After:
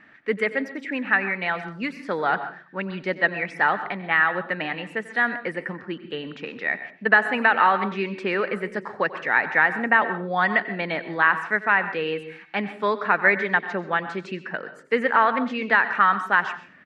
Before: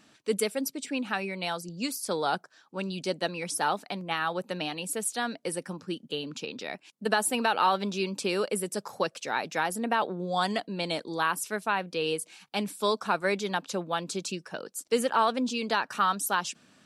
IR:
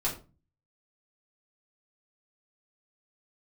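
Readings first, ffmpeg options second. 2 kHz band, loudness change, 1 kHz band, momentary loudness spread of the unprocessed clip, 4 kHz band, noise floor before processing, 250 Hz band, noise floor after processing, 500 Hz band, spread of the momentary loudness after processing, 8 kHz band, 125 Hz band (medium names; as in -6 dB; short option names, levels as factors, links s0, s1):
+13.5 dB, +7.0 dB, +6.0 dB, 9 LU, -3.5 dB, -64 dBFS, +3.0 dB, -47 dBFS, +3.5 dB, 13 LU, under -20 dB, +3.0 dB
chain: -filter_complex "[0:a]lowpass=f=1900:t=q:w=6.5,aecho=1:1:92:0.133,asplit=2[s0][s1];[1:a]atrim=start_sample=2205,adelay=122[s2];[s1][s2]afir=irnorm=-1:irlink=0,volume=0.112[s3];[s0][s3]amix=inputs=2:normalize=0,volume=1.33"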